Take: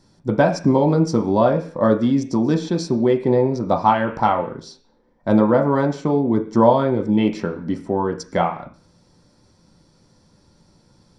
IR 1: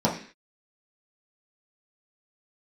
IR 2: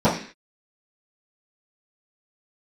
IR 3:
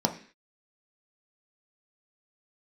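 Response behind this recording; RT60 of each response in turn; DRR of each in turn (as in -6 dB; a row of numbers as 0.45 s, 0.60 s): 3; 0.45 s, 0.45 s, 0.45 s; -5.5 dB, -15.5 dB, 3.0 dB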